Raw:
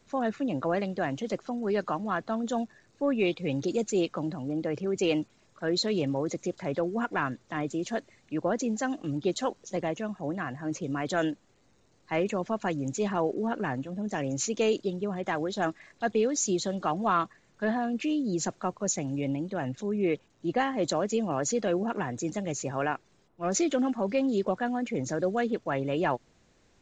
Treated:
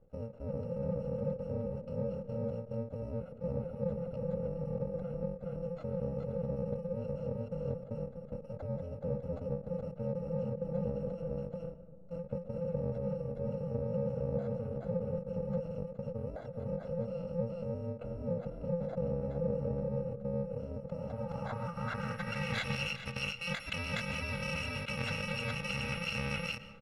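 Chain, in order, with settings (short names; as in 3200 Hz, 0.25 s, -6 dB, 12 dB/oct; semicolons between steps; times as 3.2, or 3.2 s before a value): FFT order left unsorted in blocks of 128 samples; echo 0.419 s -3.5 dB; in parallel at -0.5 dB: negative-ratio compressor -33 dBFS, ratio -1; on the sum: bell 520 Hz +4.5 dB 0.33 oct; level quantiser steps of 15 dB; 8.46–9.01 notch comb 240 Hz; on a send at -14 dB: reverb RT60 1.4 s, pre-delay 80 ms; on the sum: low-pass sweep 510 Hz -> 2500 Hz, 20.82–22.61; ending taper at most 160 dB/s; gain +1 dB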